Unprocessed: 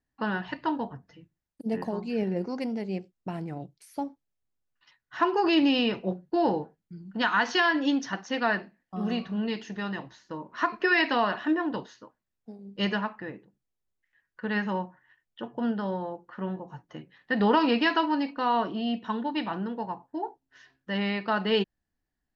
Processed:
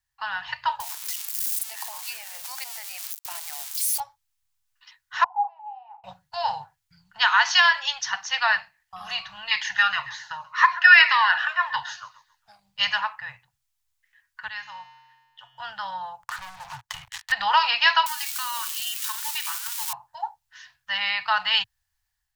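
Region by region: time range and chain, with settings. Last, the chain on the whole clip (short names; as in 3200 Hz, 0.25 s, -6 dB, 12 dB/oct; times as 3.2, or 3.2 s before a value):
0.8–4 switching spikes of -29 dBFS + steep high-pass 350 Hz + compressor 2.5:1, threshold -37 dBFS
5.24–6.04 Butterworth band-pass 810 Hz, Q 7.4 + doubler 39 ms -13 dB + mismatched tape noise reduction encoder only
9.51–12.6 bell 1600 Hz +14.5 dB 1.9 oct + feedback echo 0.134 s, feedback 37%, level -17.5 dB + cascading phaser falling 1.9 Hz
14.48–15.6 high shelf 4200 Hz +9 dB + resonator 130 Hz, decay 1.5 s, mix 80%
16.23–17.32 sample leveller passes 5 + compressor 20:1, threshold -35 dBFS
18.06–19.93 switching spikes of -26.5 dBFS + HPF 1100 Hz 24 dB/oct + compressor 4:1, threshold -35 dBFS
whole clip: elliptic band-stop 110–850 Hz, stop band 80 dB; high shelf 2000 Hz +9.5 dB; AGC gain up to 4.5 dB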